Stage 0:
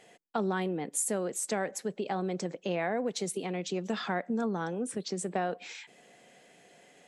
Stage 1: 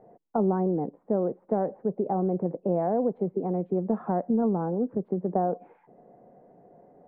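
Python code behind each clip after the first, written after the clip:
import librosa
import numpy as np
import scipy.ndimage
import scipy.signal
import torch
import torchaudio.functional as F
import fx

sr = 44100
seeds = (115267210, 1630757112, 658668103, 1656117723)

y = scipy.signal.sosfilt(scipy.signal.cheby2(4, 80, 5200.0, 'lowpass', fs=sr, output='sos'), x)
y = fx.low_shelf(y, sr, hz=90.0, db=7.5)
y = y * 10.0 ** (6.0 / 20.0)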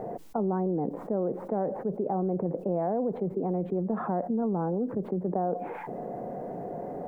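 y = fx.env_flatten(x, sr, amount_pct=70)
y = y * 10.0 ** (-5.0 / 20.0)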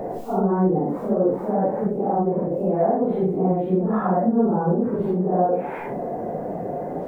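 y = fx.phase_scramble(x, sr, seeds[0], window_ms=200)
y = y * 10.0 ** (8.5 / 20.0)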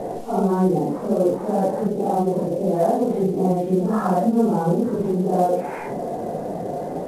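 y = fx.cvsd(x, sr, bps=64000)
y = y * 10.0 ** (1.0 / 20.0)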